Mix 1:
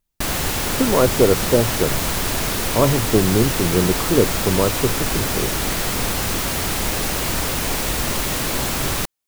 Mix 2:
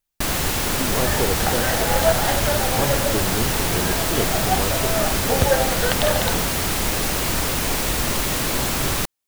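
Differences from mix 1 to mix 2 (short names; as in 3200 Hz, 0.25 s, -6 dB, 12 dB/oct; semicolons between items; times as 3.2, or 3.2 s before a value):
speech -10.0 dB; second sound: unmuted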